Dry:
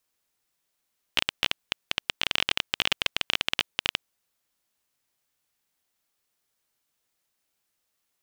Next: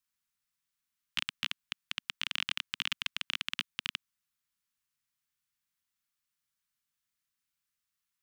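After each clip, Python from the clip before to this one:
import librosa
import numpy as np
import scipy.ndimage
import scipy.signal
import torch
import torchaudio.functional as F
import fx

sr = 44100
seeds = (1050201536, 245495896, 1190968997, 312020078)

y = scipy.signal.sosfilt(scipy.signal.cheby1(2, 1.0, [210.0, 1200.0], 'bandstop', fs=sr, output='sos'), x)
y = y * 10.0 ** (-7.5 / 20.0)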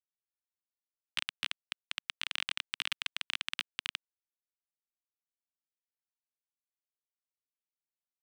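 y = fx.power_curve(x, sr, exponent=1.4)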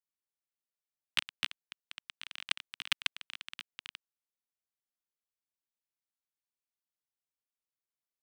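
y = fx.level_steps(x, sr, step_db=18)
y = y * 10.0 ** (8.0 / 20.0)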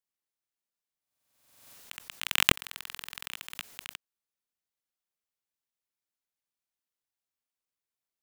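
y = fx.halfwave_hold(x, sr)
y = fx.buffer_glitch(y, sr, at_s=(1.01, 2.54), block=2048, repeats=15)
y = fx.pre_swell(y, sr, db_per_s=58.0)
y = y * 10.0 ** (1.0 / 20.0)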